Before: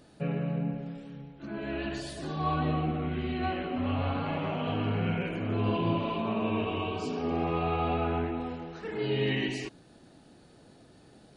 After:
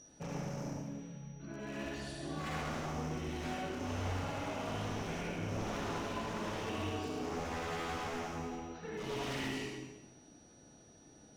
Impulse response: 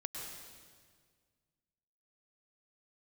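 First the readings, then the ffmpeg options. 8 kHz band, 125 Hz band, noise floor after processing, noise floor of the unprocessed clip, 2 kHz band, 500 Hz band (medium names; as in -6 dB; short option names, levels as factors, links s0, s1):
no reading, -9.5 dB, -60 dBFS, -57 dBFS, -4.5 dB, -8.5 dB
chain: -filter_complex "[0:a]aeval=exprs='val(0)+0.00447*sin(2*PI*5800*n/s)':c=same,aeval=exprs='0.0398*(abs(mod(val(0)/0.0398+3,4)-2)-1)':c=same[s0];[1:a]atrim=start_sample=2205,asetrate=79380,aresample=44100[s1];[s0][s1]afir=irnorm=-1:irlink=0"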